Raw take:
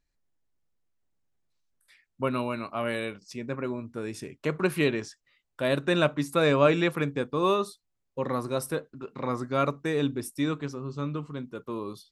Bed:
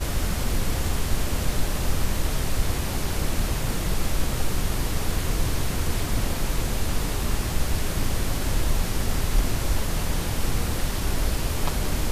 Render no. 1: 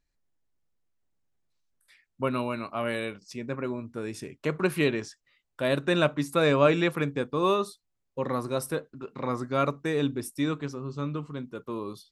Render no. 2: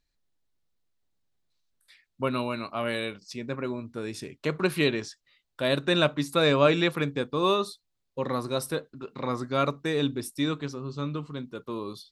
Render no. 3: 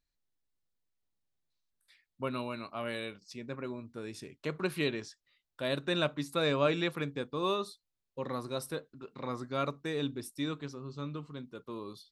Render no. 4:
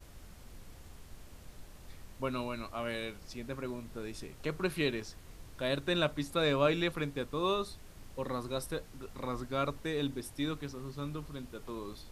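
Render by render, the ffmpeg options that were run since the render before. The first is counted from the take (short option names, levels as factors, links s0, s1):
-af anull
-af "equalizer=f=4000:w=1.8:g=7"
-af "volume=0.422"
-filter_complex "[1:a]volume=0.0447[s0];[0:a][s0]amix=inputs=2:normalize=0"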